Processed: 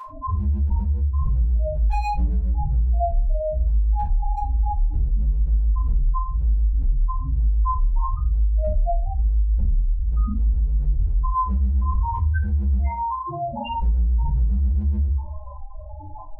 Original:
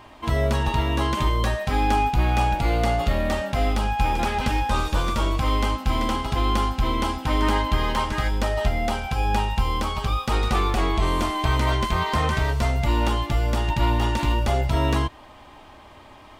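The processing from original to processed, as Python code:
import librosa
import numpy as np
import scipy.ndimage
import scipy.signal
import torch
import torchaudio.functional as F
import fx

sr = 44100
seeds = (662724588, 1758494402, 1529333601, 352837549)

y = fx.highpass(x, sr, hz=fx.line((12.77, 750.0), (13.79, 280.0)), slope=6, at=(12.77, 13.79), fade=0.02)
y = fx.spec_topn(y, sr, count=1)
y = np.clip(y, -10.0 ** (-26.5 / 20.0), 10.0 ** (-26.5 / 20.0))
y = y * (1.0 - 0.92 / 2.0 + 0.92 / 2.0 * np.cos(2.0 * np.pi * 7.3 * (np.arange(len(y)) / sr)))
y = fx.room_shoebox(y, sr, seeds[0], volume_m3=170.0, walls='furnished', distance_m=4.5)
y = fx.env_flatten(y, sr, amount_pct=50)
y = y * 10.0 ** (-3.0 / 20.0)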